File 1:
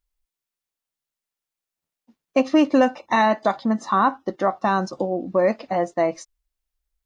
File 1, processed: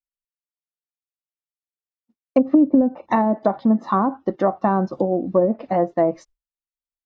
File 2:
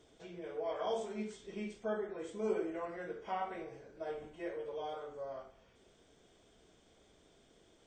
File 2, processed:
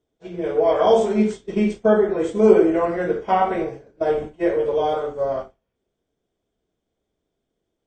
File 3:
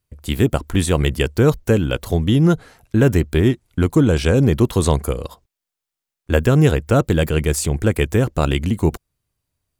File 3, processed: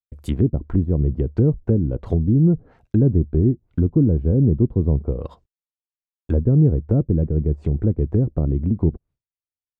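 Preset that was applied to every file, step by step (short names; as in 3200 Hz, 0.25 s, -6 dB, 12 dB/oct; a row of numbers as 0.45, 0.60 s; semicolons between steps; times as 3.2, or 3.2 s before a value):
expander -43 dBFS; tilt shelf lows +4 dB, about 880 Hz; treble ducked by the level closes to 340 Hz, closed at -11.5 dBFS; match loudness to -20 LUFS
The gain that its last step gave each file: +1.5, +19.0, -4.0 dB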